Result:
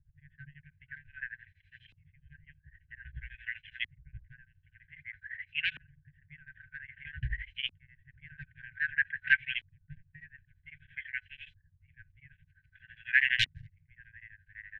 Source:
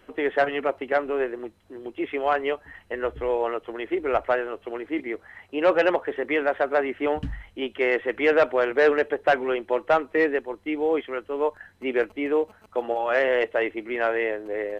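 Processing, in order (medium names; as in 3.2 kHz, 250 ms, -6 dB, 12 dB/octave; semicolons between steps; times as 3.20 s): 13.39–13.85 s: integer overflow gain 19 dB; FFT band-reject 160–1500 Hz; LFO low-pass saw up 0.52 Hz 230–3400 Hz; tremolo of two beating tones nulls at 12 Hz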